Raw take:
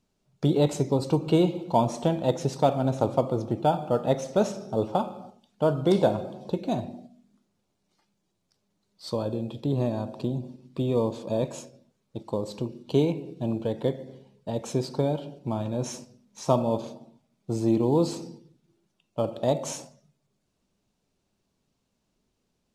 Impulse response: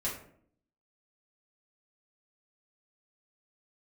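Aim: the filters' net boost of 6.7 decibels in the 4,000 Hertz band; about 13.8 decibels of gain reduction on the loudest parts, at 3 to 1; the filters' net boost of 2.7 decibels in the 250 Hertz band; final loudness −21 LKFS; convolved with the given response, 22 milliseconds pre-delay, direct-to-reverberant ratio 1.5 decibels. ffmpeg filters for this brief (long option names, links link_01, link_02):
-filter_complex "[0:a]equalizer=frequency=250:width_type=o:gain=3.5,equalizer=frequency=4000:width_type=o:gain=8,acompressor=threshold=-35dB:ratio=3,asplit=2[link_01][link_02];[1:a]atrim=start_sample=2205,adelay=22[link_03];[link_02][link_03]afir=irnorm=-1:irlink=0,volume=-5.5dB[link_04];[link_01][link_04]amix=inputs=2:normalize=0,volume=13.5dB"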